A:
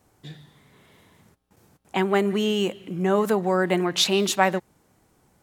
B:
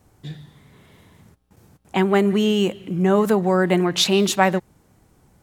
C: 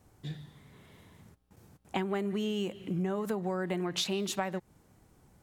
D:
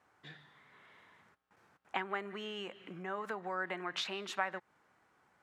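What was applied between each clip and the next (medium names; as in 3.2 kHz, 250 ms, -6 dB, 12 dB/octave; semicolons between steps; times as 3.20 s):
bass shelf 180 Hz +9 dB; trim +2 dB
compression 16:1, threshold -23 dBFS, peak gain reduction 13.5 dB; trim -5.5 dB
band-pass filter 1.5 kHz, Q 1.4; trim +4.5 dB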